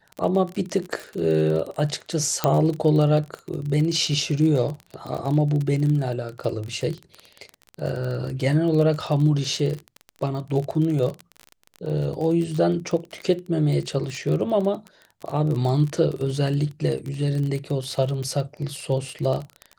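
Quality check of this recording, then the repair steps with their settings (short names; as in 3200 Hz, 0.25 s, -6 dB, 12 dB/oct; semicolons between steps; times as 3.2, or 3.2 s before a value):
crackle 29/s -27 dBFS
2.44 pop -5 dBFS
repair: de-click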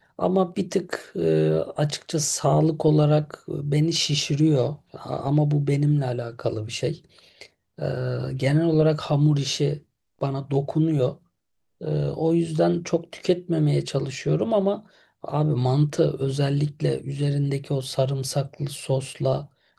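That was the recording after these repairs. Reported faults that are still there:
none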